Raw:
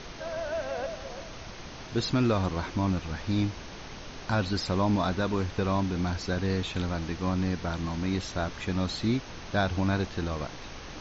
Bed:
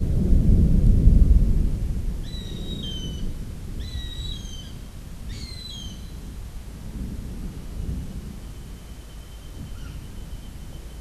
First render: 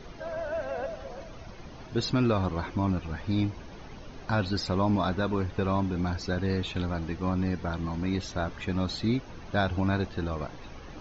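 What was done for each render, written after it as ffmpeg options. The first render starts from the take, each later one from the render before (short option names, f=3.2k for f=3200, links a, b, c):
-af "afftdn=nr=11:nf=-43"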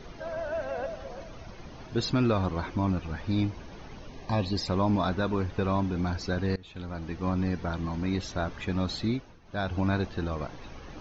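-filter_complex "[0:a]asettb=1/sr,asplit=3[a][b][c];[a]atrim=end=4.084[d];[b]atrim=start=4.08:end=4.68,asetpts=PTS-STARTPTS,afade=t=in:d=0.004:c=qsin,afade=t=out:st=0.596:d=0.004:c=qsin,asuperstop=centerf=1400:order=12:qfactor=3.8[e];[c]atrim=start=4.676[f];[d][e]acrossfade=d=0.004:c1=hsin:c2=qsin[g];[g][f]acrossfade=d=0.004:c1=qsin:c2=hsin,asplit=4[h][i][j][k];[h]atrim=end=6.56,asetpts=PTS-STARTPTS,afade=t=out:st=6.556:d=0.004:c=hsin:silence=0.0668344[l];[i]atrim=start=6.56:end=9.39,asetpts=PTS-STARTPTS,afade=t=in:d=0.73:silence=0.0668344,afade=t=out:st=2.45:d=0.38:silence=0.199526[m];[j]atrim=start=9.39:end=9.43,asetpts=PTS-STARTPTS,volume=-14dB[n];[k]atrim=start=9.43,asetpts=PTS-STARTPTS,afade=t=in:d=0.38:silence=0.199526[o];[l][m][n][o]concat=n=4:v=0:a=1"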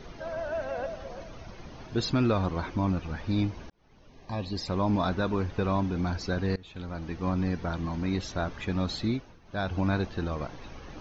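-filter_complex "[0:a]asplit=2[a][b];[a]atrim=end=3.7,asetpts=PTS-STARTPTS,afade=t=out:st=3.696:d=0.004:c=hsin[c];[b]atrim=start=3.7,asetpts=PTS-STARTPTS,afade=t=in:d=1.3[d];[c][d]concat=n=2:v=0:a=1"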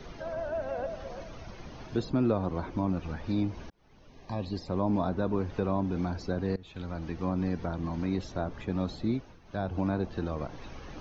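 -filter_complex "[0:a]acrossover=split=160|970[a][b][c];[a]alimiter=level_in=9dB:limit=-24dB:level=0:latency=1,volume=-9dB[d];[c]acompressor=threshold=-47dB:ratio=6[e];[d][b][e]amix=inputs=3:normalize=0"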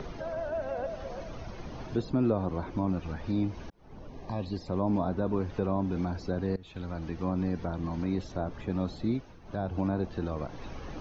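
-filter_complex "[0:a]acrossover=split=1200[a][b];[a]acompressor=mode=upward:threshold=-33dB:ratio=2.5[c];[b]alimiter=level_in=19dB:limit=-24dB:level=0:latency=1:release=14,volume=-19dB[d];[c][d]amix=inputs=2:normalize=0"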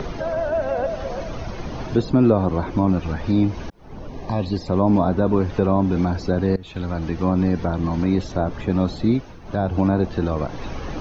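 -af "volume=11dB"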